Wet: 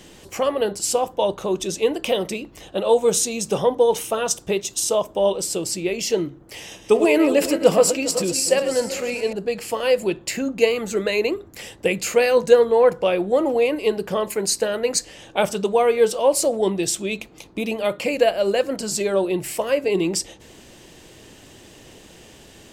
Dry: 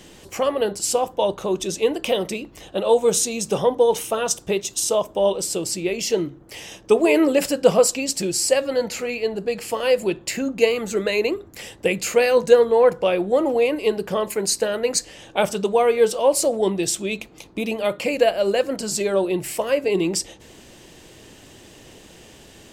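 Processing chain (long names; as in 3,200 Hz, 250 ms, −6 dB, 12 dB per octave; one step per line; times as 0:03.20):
0:06.57–0:09.33: feedback delay that plays each chunk backwards 203 ms, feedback 52%, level −10 dB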